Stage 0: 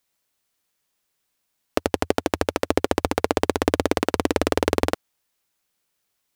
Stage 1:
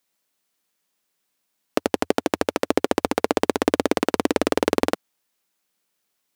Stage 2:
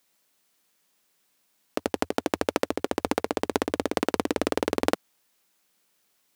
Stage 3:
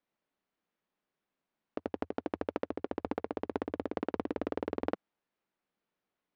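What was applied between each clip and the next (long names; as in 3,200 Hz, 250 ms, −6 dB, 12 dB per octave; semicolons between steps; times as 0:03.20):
low shelf with overshoot 140 Hz −8 dB, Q 1.5
compressor whose output falls as the input rises −25 dBFS, ratio −1
head-to-tape spacing loss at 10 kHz 37 dB; level −7 dB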